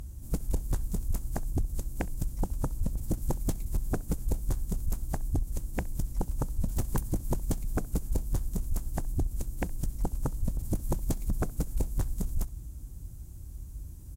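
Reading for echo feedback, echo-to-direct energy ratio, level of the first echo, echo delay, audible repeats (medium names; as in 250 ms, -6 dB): no regular repeats, -24.0 dB, -24.0 dB, 66 ms, 1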